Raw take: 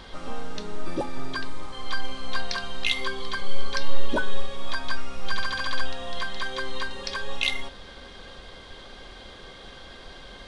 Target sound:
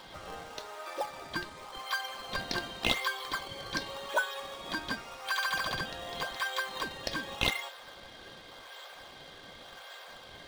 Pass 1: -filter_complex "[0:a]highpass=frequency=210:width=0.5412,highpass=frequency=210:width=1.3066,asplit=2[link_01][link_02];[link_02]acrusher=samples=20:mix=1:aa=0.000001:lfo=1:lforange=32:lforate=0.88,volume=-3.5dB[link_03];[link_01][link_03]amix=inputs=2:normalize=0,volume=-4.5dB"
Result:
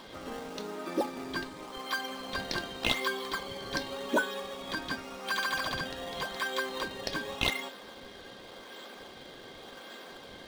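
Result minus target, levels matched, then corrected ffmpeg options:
250 Hz band +5.0 dB
-filter_complex "[0:a]highpass=frequency=580:width=0.5412,highpass=frequency=580:width=1.3066,asplit=2[link_01][link_02];[link_02]acrusher=samples=20:mix=1:aa=0.000001:lfo=1:lforange=32:lforate=0.88,volume=-3.5dB[link_03];[link_01][link_03]amix=inputs=2:normalize=0,volume=-4.5dB"

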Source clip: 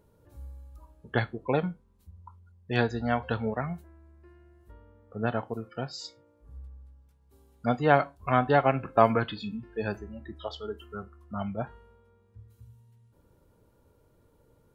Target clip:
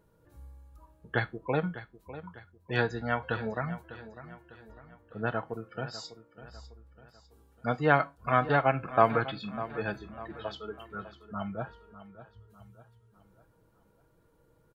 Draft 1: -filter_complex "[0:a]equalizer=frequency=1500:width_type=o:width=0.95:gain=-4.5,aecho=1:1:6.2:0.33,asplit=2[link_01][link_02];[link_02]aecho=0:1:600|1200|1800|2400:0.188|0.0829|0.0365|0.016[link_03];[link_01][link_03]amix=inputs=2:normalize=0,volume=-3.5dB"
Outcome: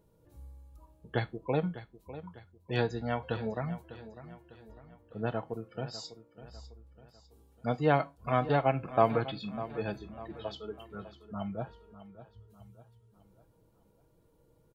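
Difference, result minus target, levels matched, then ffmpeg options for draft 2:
2,000 Hz band −6.0 dB
-filter_complex "[0:a]equalizer=frequency=1500:width_type=o:width=0.95:gain=5,aecho=1:1:6.2:0.33,asplit=2[link_01][link_02];[link_02]aecho=0:1:600|1200|1800|2400:0.188|0.0829|0.0365|0.016[link_03];[link_01][link_03]amix=inputs=2:normalize=0,volume=-3.5dB"

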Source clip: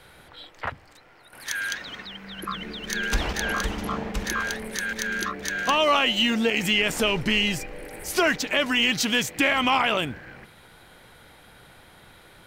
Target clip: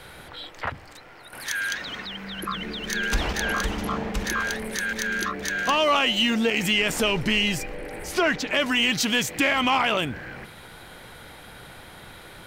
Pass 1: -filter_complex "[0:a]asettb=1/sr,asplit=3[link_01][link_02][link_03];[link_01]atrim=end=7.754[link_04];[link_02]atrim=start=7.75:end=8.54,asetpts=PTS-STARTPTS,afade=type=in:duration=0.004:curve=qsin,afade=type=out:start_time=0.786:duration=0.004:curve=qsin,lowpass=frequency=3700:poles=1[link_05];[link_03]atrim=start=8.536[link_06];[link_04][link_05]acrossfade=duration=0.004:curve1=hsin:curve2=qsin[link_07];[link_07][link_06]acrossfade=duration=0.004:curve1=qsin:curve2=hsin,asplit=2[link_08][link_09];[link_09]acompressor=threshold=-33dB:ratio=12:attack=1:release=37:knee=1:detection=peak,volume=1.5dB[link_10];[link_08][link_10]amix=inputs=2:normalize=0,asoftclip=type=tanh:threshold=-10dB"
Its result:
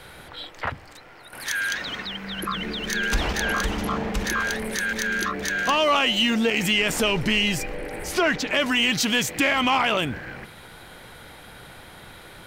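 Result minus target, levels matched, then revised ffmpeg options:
downward compressor: peak gain reduction −7.5 dB
-filter_complex "[0:a]asettb=1/sr,asplit=3[link_01][link_02][link_03];[link_01]atrim=end=7.754[link_04];[link_02]atrim=start=7.75:end=8.54,asetpts=PTS-STARTPTS,afade=type=in:duration=0.004:curve=qsin,afade=type=out:start_time=0.786:duration=0.004:curve=qsin,lowpass=frequency=3700:poles=1[link_05];[link_03]atrim=start=8.536[link_06];[link_04][link_05]acrossfade=duration=0.004:curve1=hsin:curve2=qsin[link_07];[link_07][link_06]acrossfade=duration=0.004:curve1=qsin:curve2=hsin,asplit=2[link_08][link_09];[link_09]acompressor=threshold=-41dB:ratio=12:attack=1:release=37:knee=1:detection=peak,volume=1.5dB[link_10];[link_08][link_10]amix=inputs=2:normalize=0,asoftclip=type=tanh:threshold=-10dB"

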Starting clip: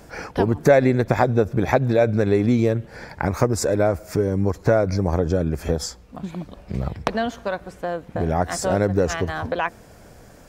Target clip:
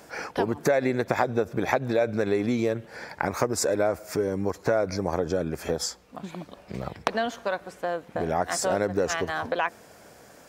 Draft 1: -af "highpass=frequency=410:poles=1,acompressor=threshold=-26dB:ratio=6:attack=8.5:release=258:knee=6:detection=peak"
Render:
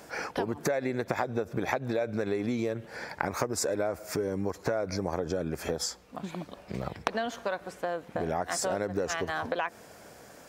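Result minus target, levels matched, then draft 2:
downward compressor: peak gain reduction +7 dB
-af "highpass=frequency=410:poles=1,acompressor=threshold=-17.5dB:ratio=6:attack=8.5:release=258:knee=6:detection=peak"

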